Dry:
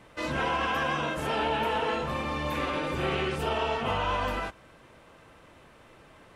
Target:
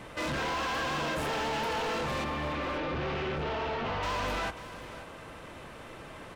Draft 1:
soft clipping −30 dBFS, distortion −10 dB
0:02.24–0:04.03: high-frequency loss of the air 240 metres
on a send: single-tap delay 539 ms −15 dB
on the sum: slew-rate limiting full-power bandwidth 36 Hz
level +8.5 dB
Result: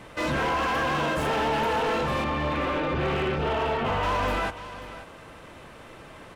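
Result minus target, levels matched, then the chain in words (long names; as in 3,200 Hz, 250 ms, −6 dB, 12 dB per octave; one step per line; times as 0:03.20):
soft clipping: distortion −5 dB
soft clipping −39 dBFS, distortion −5 dB
0:02.24–0:04.03: high-frequency loss of the air 240 metres
on a send: single-tap delay 539 ms −15 dB
on the sum: slew-rate limiting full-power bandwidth 36 Hz
level +8.5 dB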